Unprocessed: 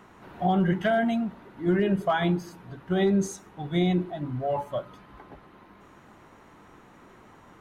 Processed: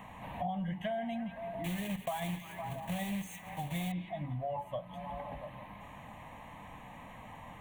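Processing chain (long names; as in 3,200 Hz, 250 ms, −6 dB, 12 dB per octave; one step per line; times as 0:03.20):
0:01.64–0:03.93: one scale factor per block 3 bits
phaser with its sweep stopped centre 1,400 Hz, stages 6
echo through a band-pass that steps 170 ms, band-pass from 2,500 Hz, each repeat −0.7 octaves, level −10.5 dB
downward compressor 4 to 1, threshold −44 dBFS, peak gain reduction 19 dB
level +6.5 dB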